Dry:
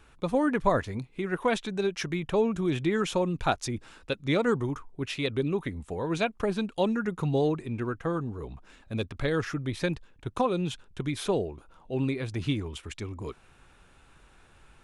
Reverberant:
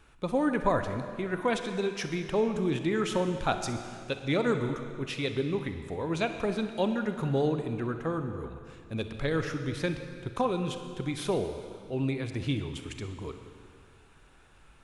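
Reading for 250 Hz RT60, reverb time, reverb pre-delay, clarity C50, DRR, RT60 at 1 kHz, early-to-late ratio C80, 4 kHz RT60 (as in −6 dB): 2.3 s, 2.2 s, 35 ms, 7.5 dB, 7.0 dB, 2.2 s, 8.5 dB, 2.1 s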